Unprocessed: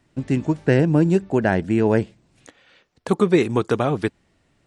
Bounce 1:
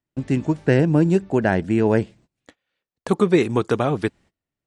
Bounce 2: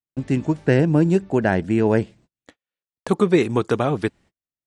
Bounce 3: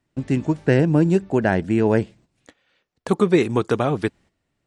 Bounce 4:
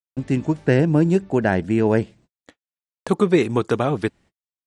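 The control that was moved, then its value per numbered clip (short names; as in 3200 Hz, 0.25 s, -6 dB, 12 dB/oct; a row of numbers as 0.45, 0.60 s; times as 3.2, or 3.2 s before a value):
gate, range: -24, -40, -11, -56 dB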